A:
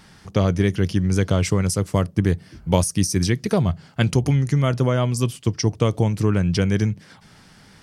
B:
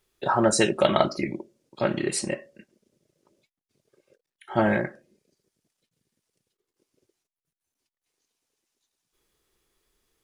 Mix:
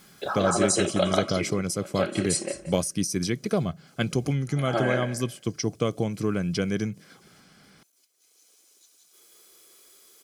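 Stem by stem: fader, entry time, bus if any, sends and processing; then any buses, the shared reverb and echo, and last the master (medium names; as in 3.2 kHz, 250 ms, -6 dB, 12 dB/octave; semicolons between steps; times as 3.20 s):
-4.0 dB, 0.00 s, no send, no echo send, none
+1.0 dB, 0.00 s, no send, echo send -3 dB, tone controls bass -12 dB, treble +9 dB; three bands compressed up and down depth 40%; auto duck -21 dB, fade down 1.20 s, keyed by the first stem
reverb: none
echo: feedback delay 176 ms, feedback 22%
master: peaking EQ 88 Hz -9.5 dB 0.82 oct; comb of notches 920 Hz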